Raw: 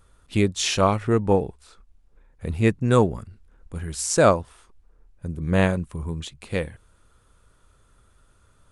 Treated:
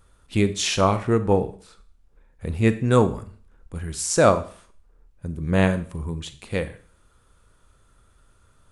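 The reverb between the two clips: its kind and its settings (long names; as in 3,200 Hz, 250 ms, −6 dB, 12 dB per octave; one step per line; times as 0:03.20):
four-comb reverb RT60 0.46 s, combs from 28 ms, DRR 11.5 dB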